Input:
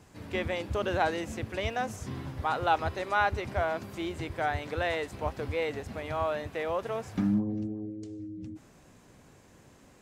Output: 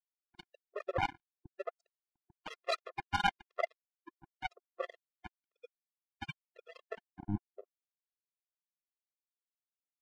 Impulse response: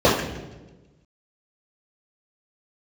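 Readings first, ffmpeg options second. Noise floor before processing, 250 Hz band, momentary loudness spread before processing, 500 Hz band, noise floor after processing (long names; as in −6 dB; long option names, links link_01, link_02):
−57 dBFS, −15.0 dB, 11 LU, −12.0 dB, below −85 dBFS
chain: -filter_complex "[0:a]acompressor=threshold=-44dB:ratio=1.5,flanger=delay=16:depth=7.2:speed=1.6,lowpass=frequency=2900:width=0.5412,lowpass=frequency=2900:width=1.3066,equalizer=frequency=200:width_type=o:width=0.22:gain=-2,asplit=2[link_01][link_02];[link_02]adelay=21,volume=-3dB[link_03];[link_01][link_03]amix=inputs=2:normalize=0,aecho=1:1:254:0.447,afftfilt=real='re*gte(hypot(re,im),0.0631)':imag='im*gte(hypot(re,im),0.0631)':win_size=1024:overlap=0.75,acrusher=bits=4:mix=0:aa=0.5,afftfilt=real='re*gt(sin(2*PI*1*pts/sr)*(1-2*mod(floor(b*sr/1024/350),2)),0)':imag='im*gt(sin(2*PI*1*pts/sr)*(1-2*mod(floor(b*sr/1024/350),2)),0)':win_size=1024:overlap=0.75,volume=9.5dB"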